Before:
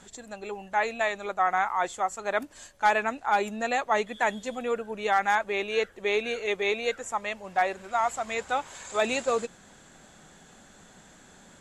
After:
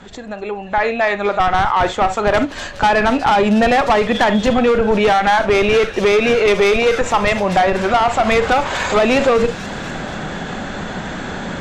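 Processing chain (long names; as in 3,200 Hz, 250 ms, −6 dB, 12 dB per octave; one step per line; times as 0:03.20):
fade in at the beginning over 3.43 s
in parallel at −7.5 dB: comparator with hysteresis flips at −26 dBFS
on the sum: high-frequency loss of the air 210 metres
downward compressor 6 to 1, threshold −27 dBFS, peak gain reduction 8.5 dB
soft clipping −29.5 dBFS, distortion −12 dB
delay with a high-pass on its return 242 ms, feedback 57%, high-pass 5,100 Hz, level −8 dB
upward compression, threshold −48 dBFS
on a send at −11 dB: low-shelf EQ 470 Hz −8.5 dB + convolution reverb, pre-delay 33 ms
on the sum: boost into a limiter +34.5 dB
level −7 dB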